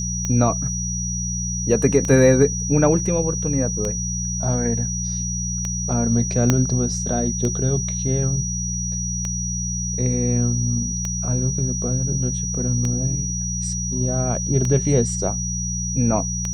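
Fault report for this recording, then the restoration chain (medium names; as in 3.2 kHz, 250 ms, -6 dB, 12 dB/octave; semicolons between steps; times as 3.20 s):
hum 60 Hz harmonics 3 -27 dBFS
tick 33 1/3 rpm -12 dBFS
whine 5.8 kHz -26 dBFS
6.50 s: pop -3 dBFS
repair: de-click; de-hum 60 Hz, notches 3; band-stop 5.8 kHz, Q 30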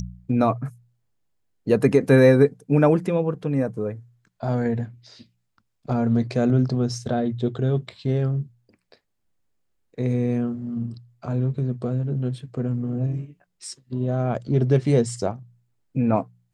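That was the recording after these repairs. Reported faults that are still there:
6.50 s: pop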